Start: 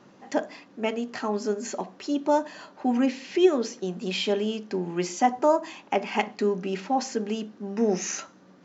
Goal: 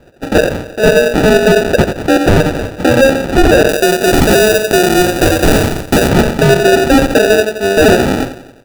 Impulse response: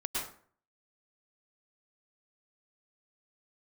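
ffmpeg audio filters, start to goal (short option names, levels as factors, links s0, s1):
-filter_complex "[0:a]agate=range=0.00316:threshold=0.00447:ratio=16:detection=peak,bass=f=250:g=-12,treble=f=4000:g=-12,aecho=1:1:2.1:0.65,aeval=exprs='0.0668*(abs(mod(val(0)/0.0668+3,4)-2)-1)':c=same,asplit=2[s0][s1];[s1]adelay=88,lowpass=f=1400:p=1,volume=0.355,asplit=2[s2][s3];[s3]adelay=88,lowpass=f=1400:p=1,volume=0.5,asplit=2[s4][s5];[s5]adelay=88,lowpass=f=1400:p=1,volume=0.5,asplit=2[s6][s7];[s7]adelay=88,lowpass=f=1400:p=1,volume=0.5,asplit=2[s8][s9];[s9]adelay=88,lowpass=f=1400:p=1,volume=0.5,asplit=2[s10][s11];[s11]adelay=88,lowpass=f=1400:p=1,volume=0.5[s12];[s0][s2][s4][s6][s8][s10][s12]amix=inputs=7:normalize=0,acompressor=mode=upward:threshold=0.00794:ratio=2.5,acrusher=samples=41:mix=1:aa=0.000001,asetnsamples=n=441:p=0,asendcmd='3.69 highshelf g 2;6.09 highshelf g -6',highshelf=f=4900:g=-9.5,alimiter=level_in=18.8:limit=0.891:release=50:level=0:latency=1,volume=0.891"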